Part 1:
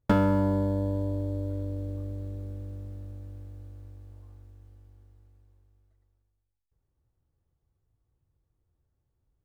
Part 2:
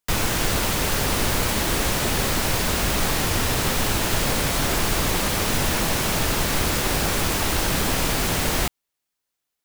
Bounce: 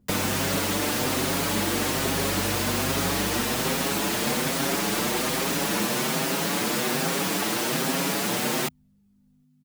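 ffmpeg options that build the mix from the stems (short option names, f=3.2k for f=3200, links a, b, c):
-filter_complex "[0:a]aphaser=in_gain=1:out_gain=1:delay=4.8:decay=0.65:speed=0.36:type=sinusoidal,acompressor=threshold=-33dB:ratio=6,volume=-1dB[a];[1:a]aeval=exprs='val(0)+0.00282*(sin(2*PI*50*n/s)+sin(2*PI*2*50*n/s)/2+sin(2*PI*3*50*n/s)/3+sin(2*PI*4*50*n/s)/4+sin(2*PI*5*50*n/s)/5)':c=same,highpass=f=170:w=0.5412,highpass=f=170:w=1.3066,asplit=2[b][c];[c]adelay=6.4,afreqshift=1.2[d];[b][d]amix=inputs=2:normalize=1,volume=0dB[e];[a][e]amix=inputs=2:normalize=0,equalizer=f=180:w=0.5:g=4"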